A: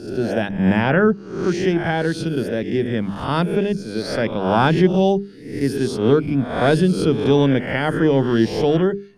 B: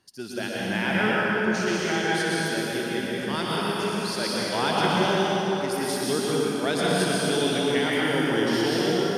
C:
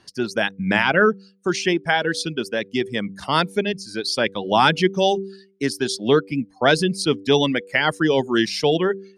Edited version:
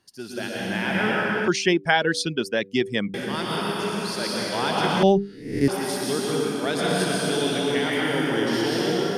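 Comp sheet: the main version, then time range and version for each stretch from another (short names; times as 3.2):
B
1.48–3.14 from C
5.03–5.68 from A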